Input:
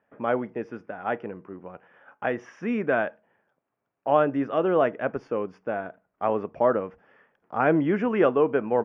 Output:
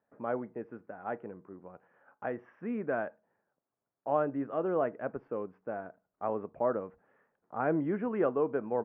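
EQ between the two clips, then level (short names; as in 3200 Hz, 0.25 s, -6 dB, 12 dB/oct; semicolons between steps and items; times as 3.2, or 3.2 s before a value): LPF 1600 Hz 12 dB/oct; air absorption 70 m; -8.0 dB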